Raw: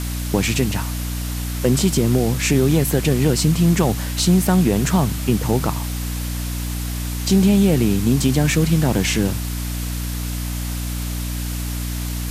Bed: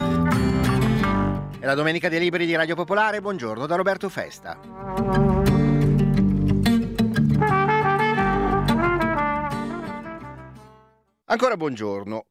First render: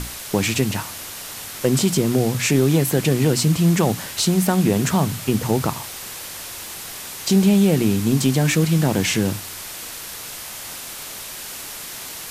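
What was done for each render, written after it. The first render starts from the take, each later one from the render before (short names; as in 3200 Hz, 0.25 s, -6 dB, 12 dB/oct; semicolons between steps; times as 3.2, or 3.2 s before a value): notches 60/120/180/240/300 Hz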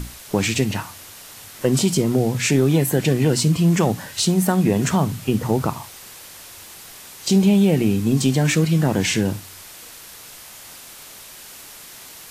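noise print and reduce 7 dB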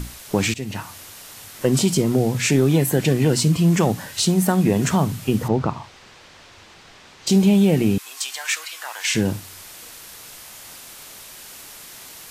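0.54–0.95 fade in, from -16 dB; 5.48–7.27 air absorption 150 m; 7.98–9.15 HPF 970 Hz 24 dB/oct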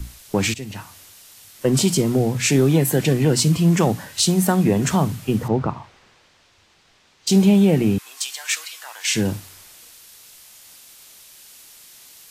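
three-band expander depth 40%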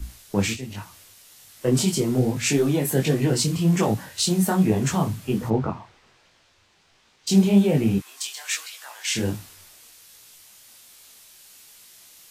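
detuned doubles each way 44 cents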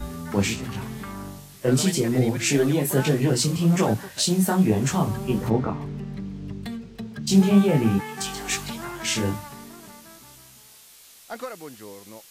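add bed -14.5 dB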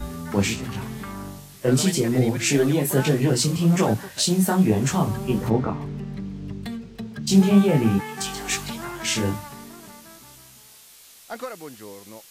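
gain +1 dB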